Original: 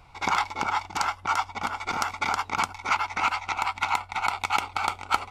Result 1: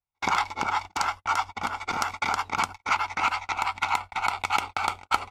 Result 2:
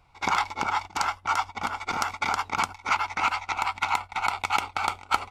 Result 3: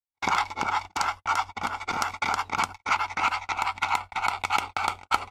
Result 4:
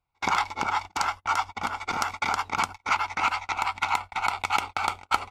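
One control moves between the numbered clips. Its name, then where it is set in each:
noise gate, range: −43, −8, −56, −30 decibels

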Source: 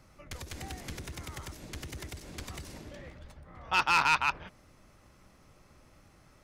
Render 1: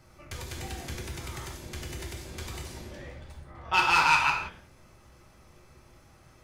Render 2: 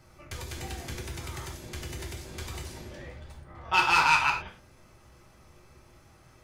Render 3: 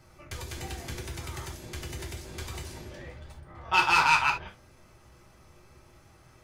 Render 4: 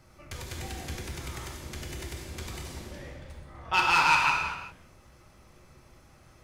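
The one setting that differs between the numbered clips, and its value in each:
reverb whose tail is shaped and stops, gate: 210, 140, 100, 430 milliseconds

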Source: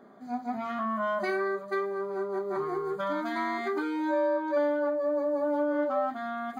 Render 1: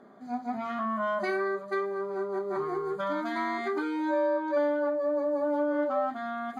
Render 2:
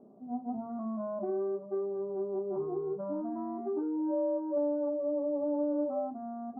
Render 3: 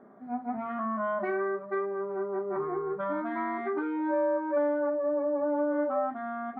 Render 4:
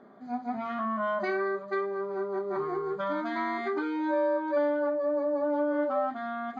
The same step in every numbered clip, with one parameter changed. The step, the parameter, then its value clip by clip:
Bessel low-pass filter, frequency: 12,000, 510, 1,600, 4,200 Hertz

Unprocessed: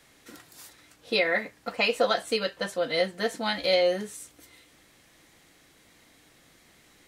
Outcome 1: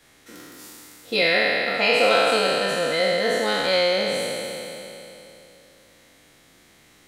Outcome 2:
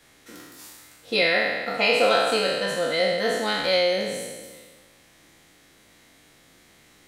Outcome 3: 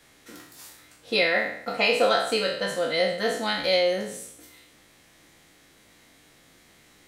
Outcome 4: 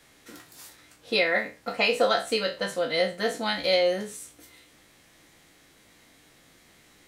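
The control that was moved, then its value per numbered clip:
peak hold with a decay on every bin, RT60: 3.18, 1.49, 0.68, 0.31 seconds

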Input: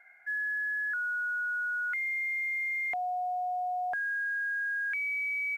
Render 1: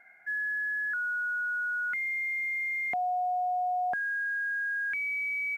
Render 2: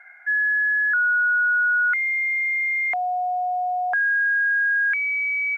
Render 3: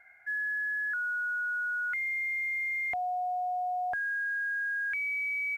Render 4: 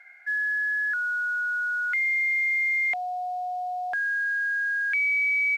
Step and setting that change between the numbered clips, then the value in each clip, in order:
parametric band, centre frequency: 200, 1,300, 71, 4,000 Hertz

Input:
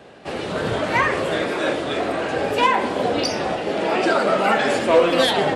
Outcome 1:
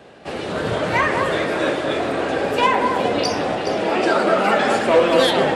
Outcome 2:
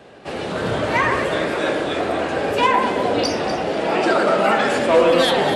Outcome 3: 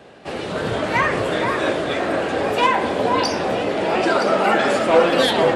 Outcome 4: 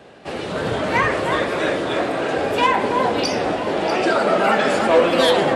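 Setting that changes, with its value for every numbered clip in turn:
delay that swaps between a low-pass and a high-pass, delay time: 209, 122, 484, 322 milliseconds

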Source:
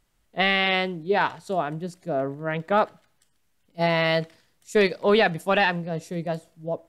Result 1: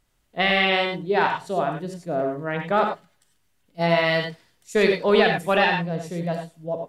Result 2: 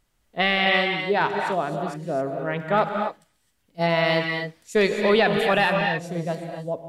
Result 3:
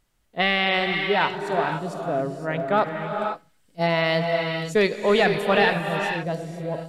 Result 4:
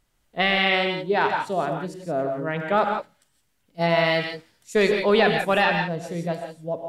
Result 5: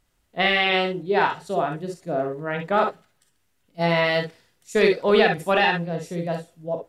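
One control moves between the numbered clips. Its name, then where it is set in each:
reverb whose tail is shaped and stops, gate: 120, 290, 540, 190, 80 milliseconds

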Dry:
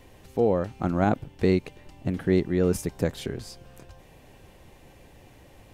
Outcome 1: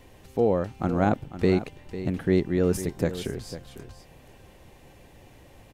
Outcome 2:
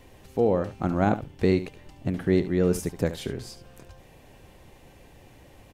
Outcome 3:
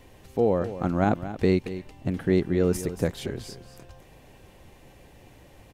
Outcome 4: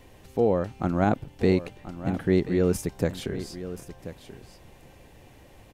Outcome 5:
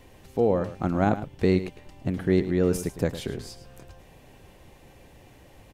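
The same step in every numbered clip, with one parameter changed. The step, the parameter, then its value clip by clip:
single-tap delay, delay time: 499, 72, 227, 1,033, 107 milliseconds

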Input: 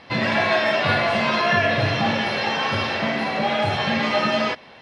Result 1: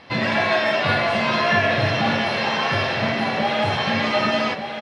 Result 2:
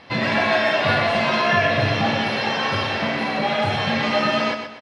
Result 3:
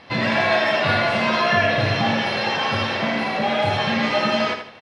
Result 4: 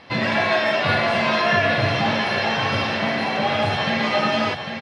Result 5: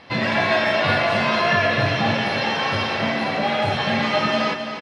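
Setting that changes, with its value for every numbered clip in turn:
repeating echo, delay time: 1,187, 125, 79, 800, 264 milliseconds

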